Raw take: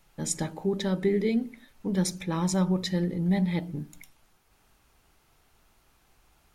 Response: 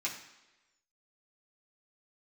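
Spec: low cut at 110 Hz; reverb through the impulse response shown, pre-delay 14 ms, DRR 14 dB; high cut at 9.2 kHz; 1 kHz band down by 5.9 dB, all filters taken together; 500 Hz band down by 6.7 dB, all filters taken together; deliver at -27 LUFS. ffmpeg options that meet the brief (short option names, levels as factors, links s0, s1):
-filter_complex "[0:a]highpass=110,lowpass=9200,equalizer=f=500:t=o:g=-8.5,equalizer=f=1000:t=o:g=-4.5,asplit=2[s0][s1];[1:a]atrim=start_sample=2205,adelay=14[s2];[s1][s2]afir=irnorm=-1:irlink=0,volume=0.133[s3];[s0][s3]amix=inputs=2:normalize=0,volume=1.5"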